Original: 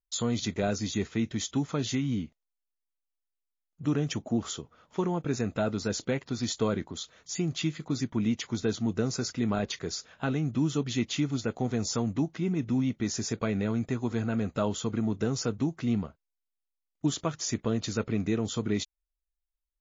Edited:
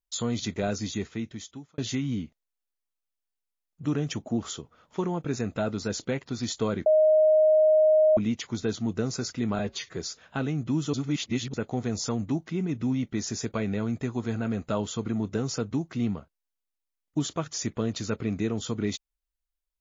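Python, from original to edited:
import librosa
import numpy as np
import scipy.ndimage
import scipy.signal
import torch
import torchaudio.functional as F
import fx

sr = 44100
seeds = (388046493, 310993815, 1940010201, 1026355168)

y = fx.edit(x, sr, fx.fade_out_span(start_s=0.84, length_s=0.94),
    fx.bleep(start_s=6.86, length_s=1.31, hz=622.0, db=-16.0),
    fx.stretch_span(start_s=9.59, length_s=0.25, factor=1.5),
    fx.reverse_span(start_s=10.81, length_s=0.6), tone=tone)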